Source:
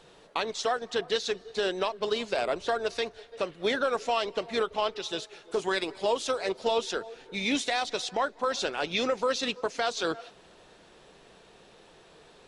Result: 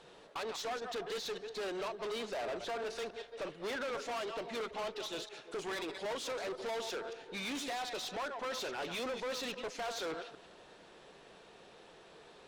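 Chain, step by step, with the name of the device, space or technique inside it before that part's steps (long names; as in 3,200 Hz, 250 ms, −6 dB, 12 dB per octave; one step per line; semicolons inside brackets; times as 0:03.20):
delay that plays each chunk backwards 115 ms, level −13 dB
tube preamp driven hard (tube saturation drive 35 dB, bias 0.3; low-shelf EQ 160 Hz −7 dB; high-shelf EQ 4,900 Hz −5.5 dB)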